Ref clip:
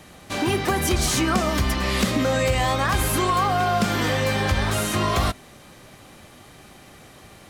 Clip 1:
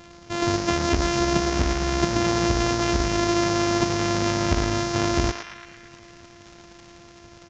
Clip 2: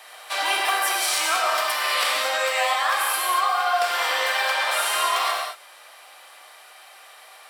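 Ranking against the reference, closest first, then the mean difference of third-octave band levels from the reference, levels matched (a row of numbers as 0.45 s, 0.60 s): 1, 2; 7.5 dB, 12.5 dB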